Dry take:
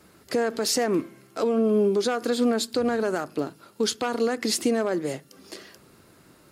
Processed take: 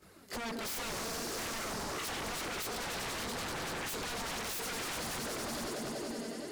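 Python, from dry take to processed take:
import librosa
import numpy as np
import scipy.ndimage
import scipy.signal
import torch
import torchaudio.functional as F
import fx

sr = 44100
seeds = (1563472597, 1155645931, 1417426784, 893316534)

p1 = fx.over_compress(x, sr, threshold_db=-27.0, ratio=-1.0)
p2 = x + (p1 * librosa.db_to_amplitude(-1.0))
p3 = fx.echo_swell(p2, sr, ms=95, loudest=5, wet_db=-11)
p4 = fx.chorus_voices(p3, sr, voices=2, hz=0.68, base_ms=20, depth_ms=2.5, mix_pct=70)
p5 = 10.0 ** (-26.0 / 20.0) * (np.abs((p4 / 10.0 ** (-26.0 / 20.0) + 3.0) % 4.0 - 2.0) - 1.0)
y = p5 * librosa.db_to_amplitude(-7.5)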